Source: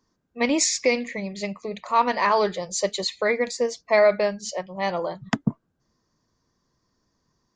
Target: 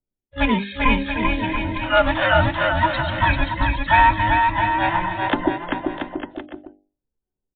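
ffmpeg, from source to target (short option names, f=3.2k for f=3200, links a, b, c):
-filter_complex "[0:a]afftfilt=real='real(if(between(b,1,1008),(2*floor((b-1)/24)+1)*24-b,b),0)':imag='imag(if(between(b,1,1008),(2*floor((b-1)/24)+1)*24-b,b),0)*if(between(b,1,1008),-1,1)':win_size=2048:overlap=0.75,anlmdn=0.0398,bandreject=f=50:t=h:w=6,bandreject=f=100:t=h:w=6,bandreject=f=150:t=h:w=6,bandreject=f=200:t=h:w=6,bandreject=f=250:t=h:w=6,bandreject=f=300:t=h:w=6,bandreject=f=350:t=h:w=6,bandreject=f=400:t=h:w=6,adynamicequalizer=threshold=0.0224:dfrequency=750:dqfactor=0.72:tfrequency=750:tqfactor=0.72:attack=5:release=100:ratio=0.375:range=3.5:mode=cutabove:tftype=bell,asplit=2[a][b];[b]asetrate=88200,aresample=44100,atempo=0.5,volume=-9dB[c];[a][c]amix=inputs=2:normalize=0,asoftclip=type=hard:threshold=-12dB,aecho=1:1:390|682.5|901.9|1066|1190:0.631|0.398|0.251|0.158|0.1,volume=4.5dB" -ar 8000 -c:a libmp3lame -b:a 40k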